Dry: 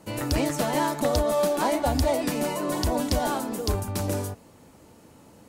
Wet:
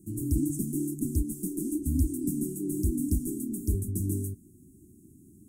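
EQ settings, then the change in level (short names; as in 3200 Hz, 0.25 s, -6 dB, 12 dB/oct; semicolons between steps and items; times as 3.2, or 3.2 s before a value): brick-wall FIR band-stop 400–1900 Hz; elliptic band-stop 470–7900 Hz, stop band 40 dB; notch 7400 Hz, Q 20; 0.0 dB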